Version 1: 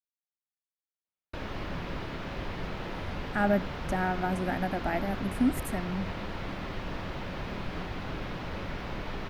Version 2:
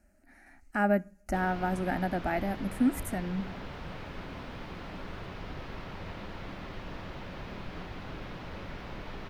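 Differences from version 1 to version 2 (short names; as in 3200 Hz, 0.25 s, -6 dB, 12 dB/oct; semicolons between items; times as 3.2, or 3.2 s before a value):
speech: entry -2.60 s; background -5.0 dB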